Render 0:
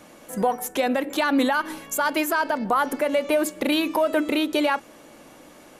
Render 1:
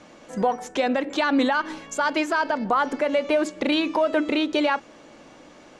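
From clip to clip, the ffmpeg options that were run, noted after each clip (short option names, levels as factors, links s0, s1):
-af "lowpass=f=6700:w=0.5412,lowpass=f=6700:w=1.3066"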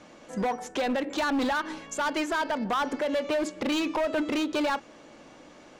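-af "asoftclip=type=hard:threshold=0.0891,volume=0.75"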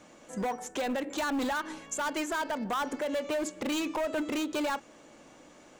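-af "aexciter=amount=2.8:drive=3.6:freq=6600,volume=0.631"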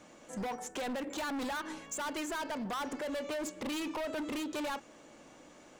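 -af "asoftclip=type=hard:threshold=0.0224,volume=0.841"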